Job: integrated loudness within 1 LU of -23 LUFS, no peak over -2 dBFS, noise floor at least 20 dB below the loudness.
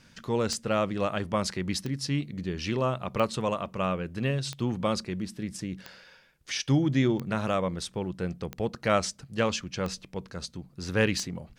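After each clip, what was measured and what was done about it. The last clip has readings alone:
clicks found 9; loudness -30.0 LUFS; peak level -9.5 dBFS; loudness target -23.0 LUFS
-> de-click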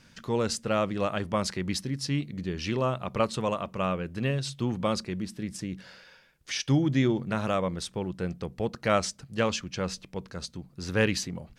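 clicks found 0; loudness -30.0 LUFS; peak level -9.5 dBFS; loudness target -23.0 LUFS
-> trim +7 dB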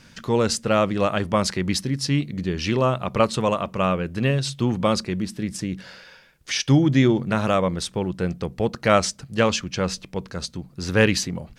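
loudness -23.0 LUFS; peak level -2.5 dBFS; noise floor -52 dBFS

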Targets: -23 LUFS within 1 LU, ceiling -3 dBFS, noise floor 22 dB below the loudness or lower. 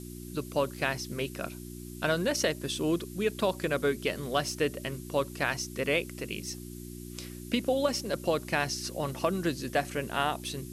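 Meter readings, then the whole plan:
hum 60 Hz; highest harmonic 360 Hz; hum level -40 dBFS; noise floor -43 dBFS; noise floor target -53 dBFS; loudness -31.0 LUFS; peak level -12.5 dBFS; loudness target -23.0 LUFS
-> de-hum 60 Hz, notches 6; noise print and reduce 10 dB; trim +8 dB

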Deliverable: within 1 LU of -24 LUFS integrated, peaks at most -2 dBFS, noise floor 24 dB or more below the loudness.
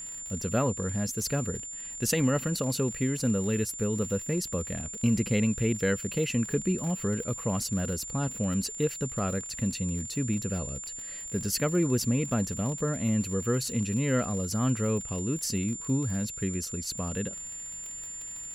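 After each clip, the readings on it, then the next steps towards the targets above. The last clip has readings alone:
tick rate 48 per s; steady tone 7.2 kHz; tone level -37 dBFS; loudness -29.5 LUFS; peak level -13.5 dBFS; loudness target -24.0 LUFS
-> de-click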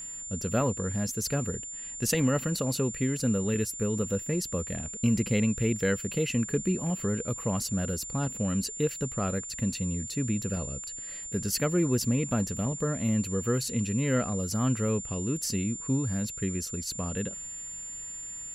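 tick rate 0.054 per s; steady tone 7.2 kHz; tone level -37 dBFS
-> band-stop 7.2 kHz, Q 30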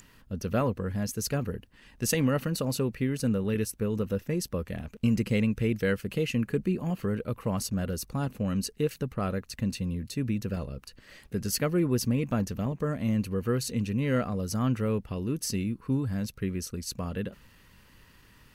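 steady tone not found; loudness -30.0 LUFS; peak level -14.0 dBFS; loudness target -24.0 LUFS
-> trim +6 dB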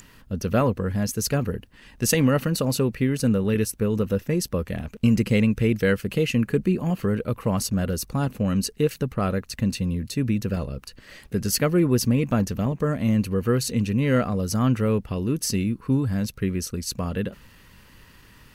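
loudness -24.0 LUFS; peak level -8.0 dBFS; noise floor -52 dBFS

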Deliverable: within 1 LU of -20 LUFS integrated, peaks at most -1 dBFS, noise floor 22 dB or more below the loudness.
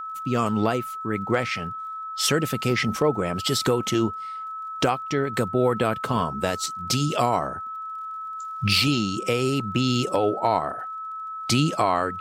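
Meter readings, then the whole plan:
tick rate 33 per s; steady tone 1.3 kHz; tone level -31 dBFS; loudness -24.5 LUFS; peak level -9.0 dBFS; loudness target -20.0 LUFS
-> de-click; band-stop 1.3 kHz, Q 30; trim +4.5 dB

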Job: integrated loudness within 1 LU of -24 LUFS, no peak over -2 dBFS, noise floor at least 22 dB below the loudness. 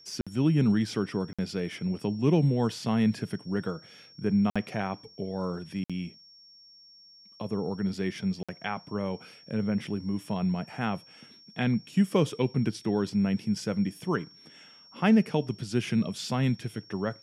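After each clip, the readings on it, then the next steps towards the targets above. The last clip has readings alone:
dropouts 5; longest dropout 56 ms; steady tone 5.5 kHz; tone level -52 dBFS; loudness -29.0 LUFS; peak level -12.0 dBFS; loudness target -24.0 LUFS
-> interpolate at 0.21/1.33/4.50/5.84/8.43 s, 56 ms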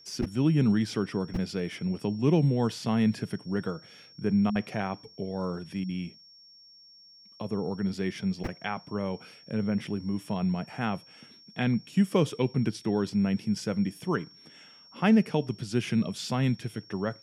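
dropouts 0; steady tone 5.5 kHz; tone level -52 dBFS
-> band-stop 5.5 kHz, Q 30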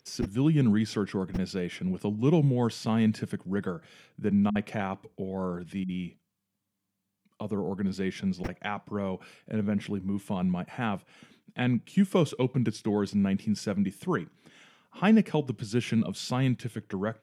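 steady tone not found; loudness -29.0 LUFS; peak level -12.5 dBFS; loudness target -24.0 LUFS
-> trim +5 dB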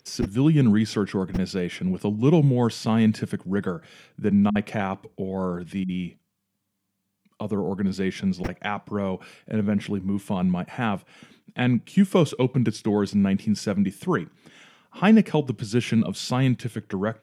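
loudness -24.0 LUFS; peak level -7.5 dBFS; noise floor -77 dBFS

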